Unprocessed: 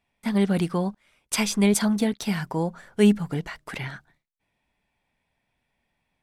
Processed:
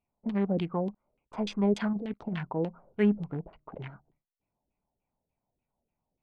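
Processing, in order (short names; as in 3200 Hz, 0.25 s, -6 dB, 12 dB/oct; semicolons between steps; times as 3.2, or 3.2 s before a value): Wiener smoothing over 25 samples; 1.93–2.45 negative-ratio compressor -25 dBFS, ratio -0.5; LFO low-pass saw down 3.4 Hz 390–3400 Hz; gain -7 dB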